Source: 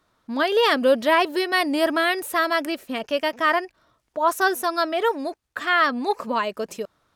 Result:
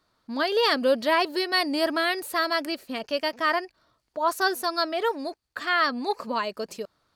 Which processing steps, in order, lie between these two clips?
bell 4500 Hz +11 dB 0.22 oct; gain -4 dB

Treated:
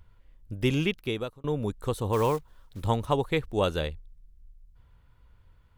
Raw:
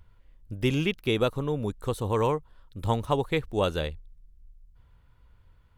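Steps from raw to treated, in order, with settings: 0.87–1.44 fade out; 2.13–2.84 block floating point 5-bit

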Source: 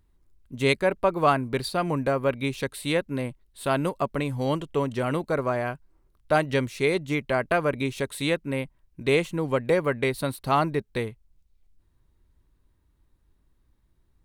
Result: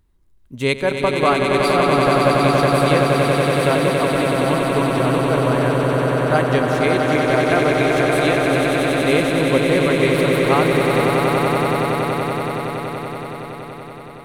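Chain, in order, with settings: swelling echo 94 ms, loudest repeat 8, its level -5.5 dB; gain +3 dB

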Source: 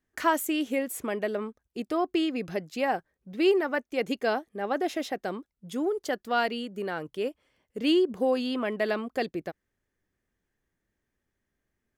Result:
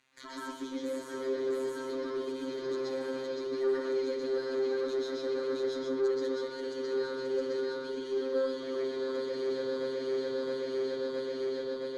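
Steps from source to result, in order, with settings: regenerating reverse delay 0.333 s, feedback 78%, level -9 dB; resonant high shelf 2400 Hz +11.5 dB, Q 3; reverse; compressor, threshold -34 dBFS, peak gain reduction 20 dB; reverse; limiter -32.5 dBFS, peak gain reduction 10.5 dB; sample leveller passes 2; fixed phaser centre 740 Hz, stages 6; added noise white -66 dBFS; robotiser 132 Hz; air absorption 100 m; delay with a stepping band-pass 0.118 s, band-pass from 3000 Hz, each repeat -1.4 oct, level -7 dB; reverb RT60 0.45 s, pre-delay 0.118 s, DRR -4.5 dB; tube stage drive 15 dB, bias 0.2

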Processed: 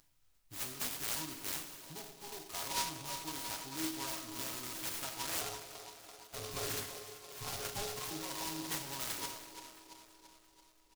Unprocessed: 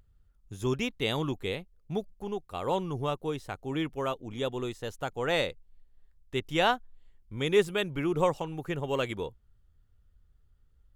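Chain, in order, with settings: spectral trails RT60 0.37 s; comb 7.3 ms, depth 89%; limiter -19.5 dBFS, peak gain reduction 11.5 dB; bell 480 Hz -14.5 dB 0.82 oct; compressor 4:1, threshold -36 dBFS, peak gain reduction 8 dB; tilt +3.5 dB/oct; resonator 320 Hz, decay 0.38 s, harmonics all, mix 90%; spring tank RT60 1.7 s, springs 44 ms, chirp 20 ms, DRR 9.5 dB; 5.41–8.11 inverted band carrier 3300 Hz; band-limited delay 0.336 s, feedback 58%, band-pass 670 Hz, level -7.5 dB; noise-modulated delay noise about 4400 Hz, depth 0.17 ms; gain +12.5 dB

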